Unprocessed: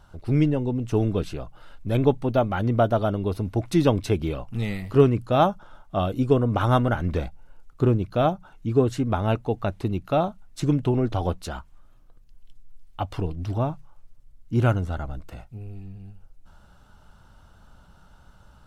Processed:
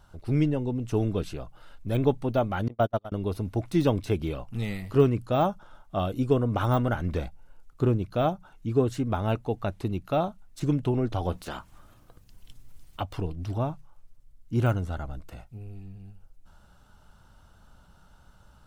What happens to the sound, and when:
0:02.68–0:03.12: noise gate −20 dBFS, range −39 dB
0:11.32–0:13.00: ceiling on every frequency bin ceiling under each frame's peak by 16 dB
whole clip: de-essing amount 90%; high-shelf EQ 5,900 Hz +4.5 dB; level −3.5 dB

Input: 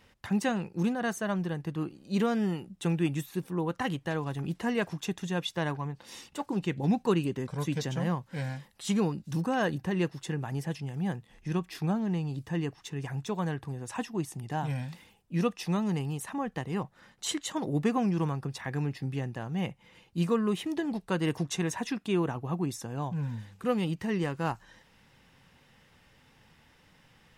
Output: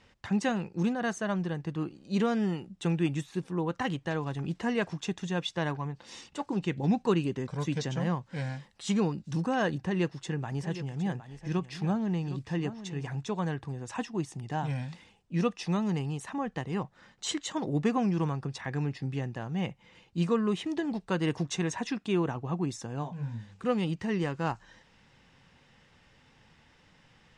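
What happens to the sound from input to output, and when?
0:09.76–0:13.23: single-tap delay 762 ms −12.5 dB
0:23.02–0:23.48: micro pitch shift up and down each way 45 cents → 27 cents
whole clip: low-pass filter 8,000 Hz 24 dB per octave

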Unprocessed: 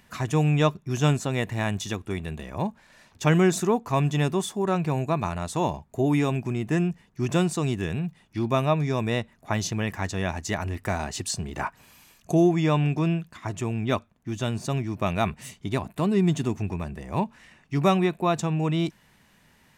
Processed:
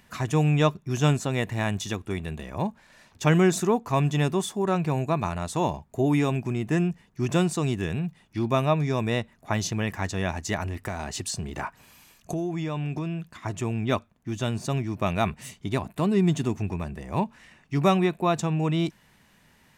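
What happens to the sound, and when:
0:10.63–0:13.35: downward compressor, threshold −26 dBFS

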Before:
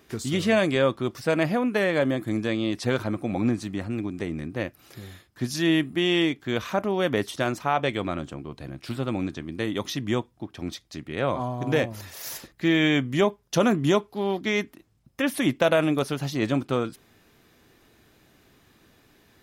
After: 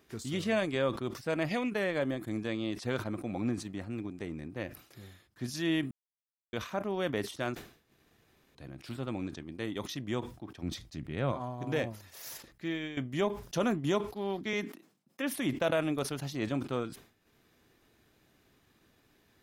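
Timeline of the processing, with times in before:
0:01.49–0:01.70: gain on a spectral selection 1,800–9,200 Hz +11 dB
0:05.91–0:06.53: silence
0:07.55–0:08.55: fill with room tone
0:10.63–0:11.32: bass and treble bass +9 dB, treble −1 dB
0:12.38–0:12.97: fade out, to −13 dB
0:14.53–0:15.34: Butterworth high-pass 170 Hz
whole clip: transient designer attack −2 dB, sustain −7 dB; level that may fall only so fast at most 120 dB per second; level −8 dB

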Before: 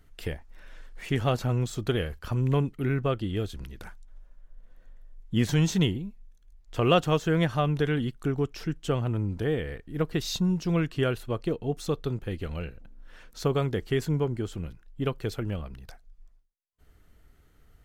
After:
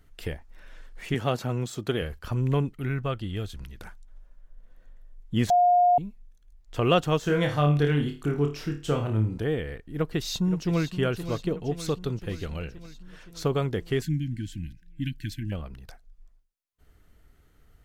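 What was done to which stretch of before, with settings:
0:01.14–0:02.02: high-pass filter 130 Hz
0:02.74–0:03.80: parametric band 360 Hz −6 dB 1.5 octaves
0:05.50–0:05.98: beep over 712 Hz −16 dBFS
0:07.20–0:09.38: flutter between parallel walls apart 4.7 metres, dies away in 0.33 s
0:09.93–0:10.94: delay throw 520 ms, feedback 65%, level −11.5 dB
0:11.59–0:13.40: parametric band 6,900 Hz +3.5 dB 2.3 octaves
0:14.02–0:15.52: linear-phase brick-wall band-stop 330–1,500 Hz

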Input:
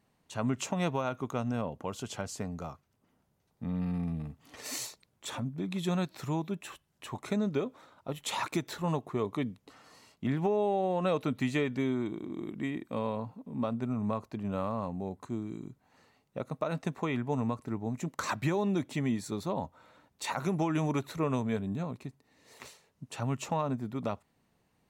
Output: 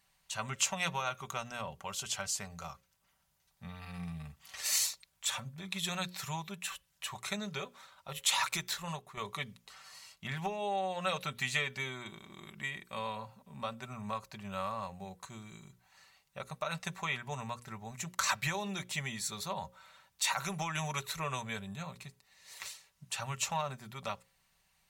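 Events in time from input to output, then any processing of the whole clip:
0:08.64–0:09.17: fade out, to −7.5 dB
whole clip: guitar amp tone stack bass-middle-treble 10-0-10; mains-hum notches 60/120/180/240/300/360/420/480/540 Hz; comb filter 5.2 ms, depth 46%; level +8 dB

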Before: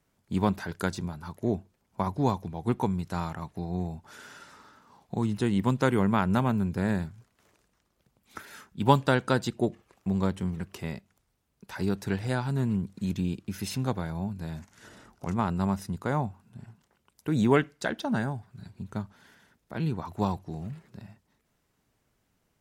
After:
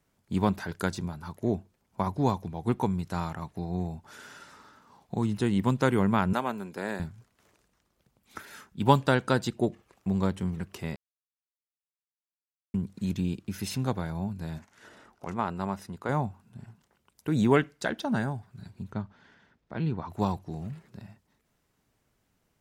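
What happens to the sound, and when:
0:06.33–0:07.00: high-pass filter 370 Hz
0:10.96–0:12.74: silence
0:14.58–0:16.09: bass and treble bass −9 dB, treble −6 dB
0:18.92–0:20.10: high-frequency loss of the air 140 metres

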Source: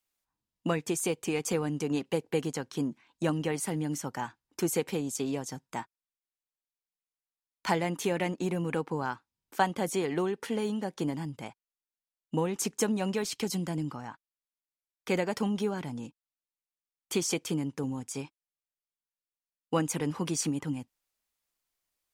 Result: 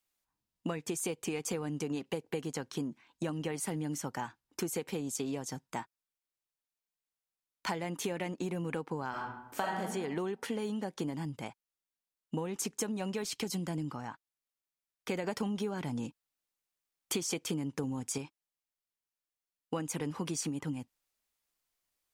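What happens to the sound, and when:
0:09.09–0:09.80: thrown reverb, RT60 0.85 s, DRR −5 dB
0:15.24–0:18.18: clip gain +5.5 dB
whole clip: downward compressor, threshold −32 dBFS

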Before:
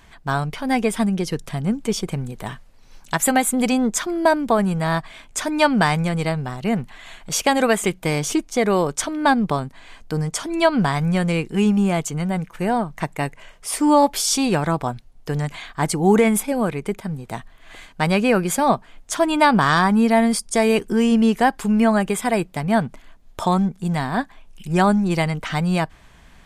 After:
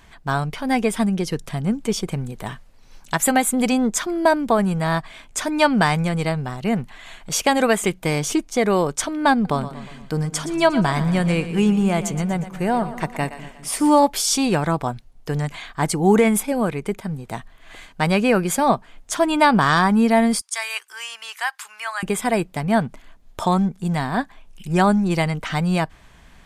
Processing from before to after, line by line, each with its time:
0:09.33–0:14.00: echo with a time of its own for lows and highs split 340 Hz, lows 202 ms, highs 119 ms, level −12.5 dB
0:20.41–0:22.03: high-pass filter 1,100 Hz 24 dB per octave

